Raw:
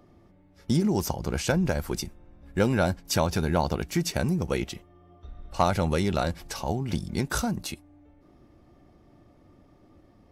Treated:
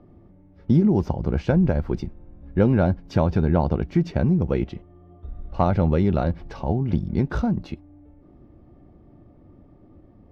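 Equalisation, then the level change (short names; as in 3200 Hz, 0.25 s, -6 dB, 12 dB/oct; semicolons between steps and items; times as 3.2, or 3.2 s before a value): air absorption 260 m; tilt shelf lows +5.5 dB, about 770 Hz; +2.0 dB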